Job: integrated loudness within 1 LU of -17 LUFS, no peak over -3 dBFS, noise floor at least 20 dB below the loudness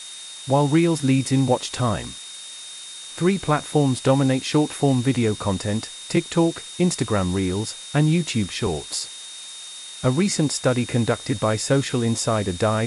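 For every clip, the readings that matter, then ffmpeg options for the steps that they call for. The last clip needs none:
steady tone 3.7 kHz; tone level -38 dBFS; noise floor -38 dBFS; noise floor target -42 dBFS; loudness -22.0 LUFS; peak level -6.0 dBFS; loudness target -17.0 LUFS
-> -af "bandreject=f=3700:w=30"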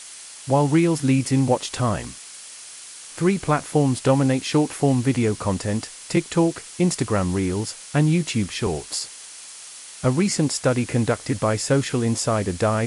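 steady tone not found; noise floor -41 dBFS; noise floor target -42 dBFS
-> -af "afftdn=nr=6:nf=-41"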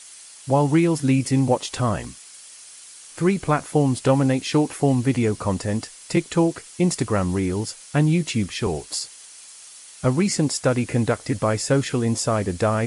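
noise floor -44 dBFS; loudness -22.0 LUFS; peak level -6.0 dBFS; loudness target -17.0 LUFS
-> -af "volume=1.78,alimiter=limit=0.708:level=0:latency=1"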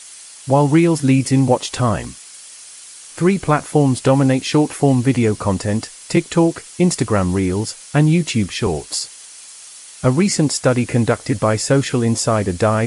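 loudness -17.0 LUFS; peak level -3.0 dBFS; noise floor -39 dBFS

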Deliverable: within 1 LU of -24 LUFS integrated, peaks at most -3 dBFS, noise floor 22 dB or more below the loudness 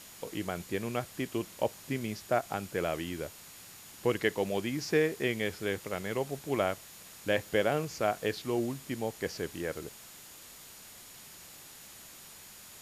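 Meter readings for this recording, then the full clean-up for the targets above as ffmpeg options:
steady tone 6.9 kHz; tone level -59 dBFS; noise floor -51 dBFS; noise floor target -56 dBFS; loudness -33.5 LUFS; peak level -13.5 dBFS; loudness target -24.0 LUFS
-> -af "bandreject=f=6900:w=30"
-af "afftdn=nr=6:nf=-51"
-af "volume=2.99"

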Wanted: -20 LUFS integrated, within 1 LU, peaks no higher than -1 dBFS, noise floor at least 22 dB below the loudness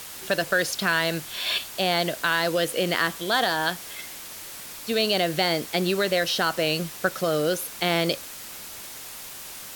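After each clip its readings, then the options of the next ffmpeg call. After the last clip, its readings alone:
noise floor -40 dBFS; noise floor target -47 dBFS; loudness -24.5 LUFS; peak level -7.5 dBFS; loudness target -20.0 LUFS
-> -af "afftdn=nr=7:nf=-40"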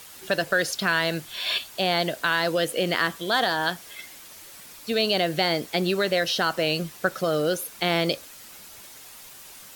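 noise floor -45 dBFS; noise floor target -47 dBFS
-> -af "afftdn=nr=6:nf=-45"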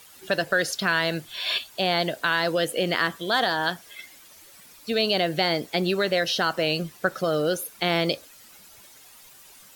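noise floor -50 dBFS; loudness -24.5 LUFS; peak level -8.0 dBFS; loudness target -20.0 LUFS
-> -af "volume=1.68"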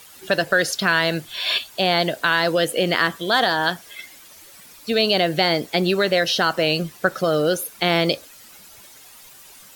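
loudness -20.0 LUFS; peak level -3.5 dBFS; noise floor -46 dBFS

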